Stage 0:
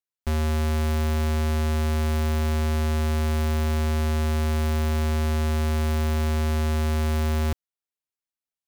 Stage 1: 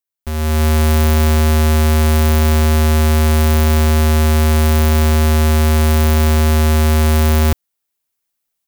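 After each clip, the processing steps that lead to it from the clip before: high shelf 9700 Hz +9.5 dB; AGC gain up to 12.5 dB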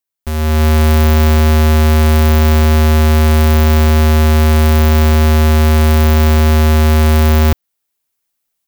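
dynamic EQ 9400 Hz, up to -6 dB, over -41 dBFS, Q 0.84; gain +3 dB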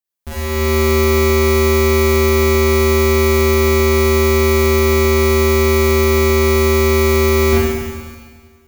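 Schroeder reverb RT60 1.7 s, combs from 32 ms, DRR -8.5 dB; gain -7.5 dB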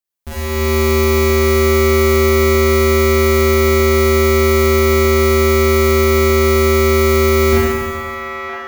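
band-limited delay 0.965 s, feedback 53%, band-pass 1200 Hz, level -4 dB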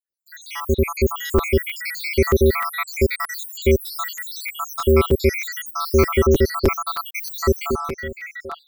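random spectral dropouts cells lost 85%; crackling interface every 0.31 s, samples 256, repeat, from 0.45

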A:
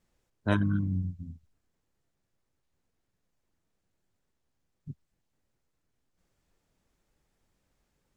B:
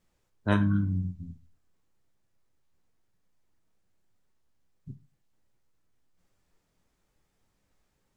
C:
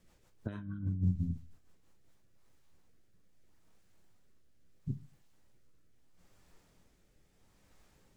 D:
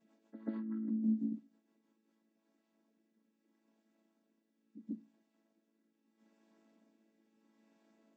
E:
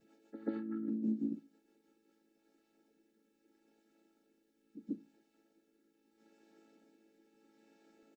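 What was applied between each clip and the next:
on a send at -5 dB: resonant low shelf 600 Hz -6.5 dB, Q 1.5 + reverb RT60 0.30 s, pre-delay 10 ms
rotary speaker horn 6.3 Hz, later 0.75 Hz, at 1.64; negative-ratio compressor -34 dBFS, ratio -0.5; gain +2 dB
chord vocoder major triad, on A3; pre-echo 0.136 s -12 dB; gain +1 dB
Butterworth band-stop 1000 Hz, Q 3.7; low shelf 160 Hz +9 dB; comb 2.3 ms, depth 68%; gain +4 dB

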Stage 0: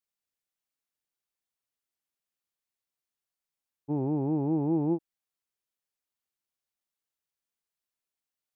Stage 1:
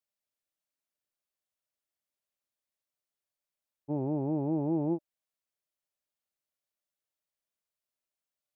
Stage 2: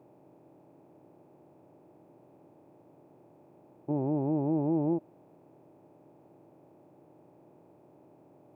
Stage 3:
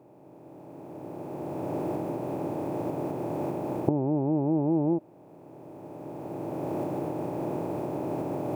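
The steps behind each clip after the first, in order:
bell 600 Hz +10 dB 0.21 oct; gain -3 dB
per-bin compression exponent 0.4
recorder AGC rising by 14 dB/s; gain +3 dB

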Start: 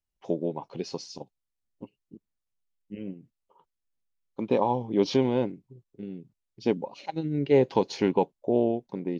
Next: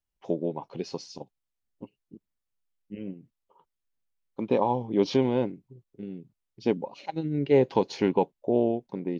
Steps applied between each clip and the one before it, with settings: tone controls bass 0 dB, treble -3 dB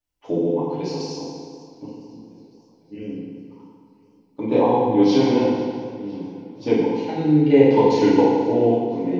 FDN reverb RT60 1.7 s, low-frequency decay 1.05×, high-frequency decay 0.9×, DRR -9 dB; warbling echo 0.503 s, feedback 60%, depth 104 cents, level -21 dB; gain -2 dB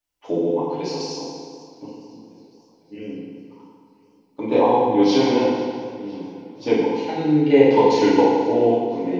low shelf 270 Hz -10 dB; gain +3.5 dB

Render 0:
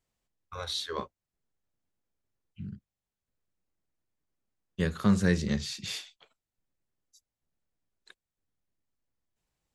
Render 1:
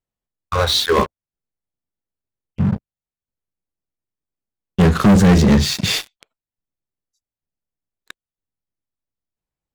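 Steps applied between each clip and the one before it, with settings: high shelf 2300 Hz -8.5 dB; sample leveller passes 5; gain +5 dB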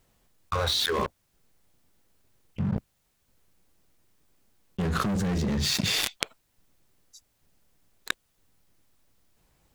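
fast leveller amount 100%; gain -18 dB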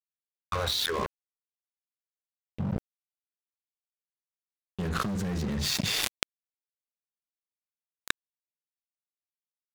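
crossover distortion -34 dBFS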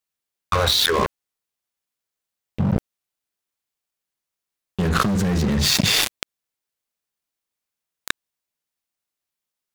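maximiser +11.5 dB; gain -1 dB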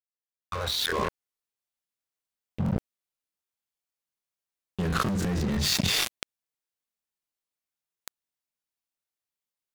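opening faded in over 1.10 s; crackling interface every 0.16 s, samples 1024, repeat, from 0.4; gain -7 dB

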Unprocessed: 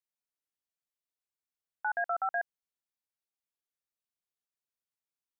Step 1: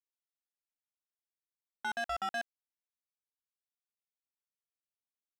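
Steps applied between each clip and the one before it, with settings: sample leveller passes 3; gain -7 dB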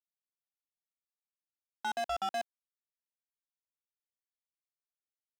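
median filter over 25 samples; tone controls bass -6 dB, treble -1 dB; gain +2.5 dB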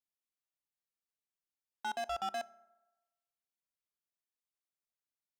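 reverb RT60 1.1 s, pre-delay 3 ms, DRR 17.5 dB; gain -3 dB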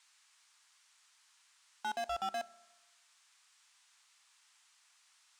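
band noise 930–8900 Hz -69 dBFS

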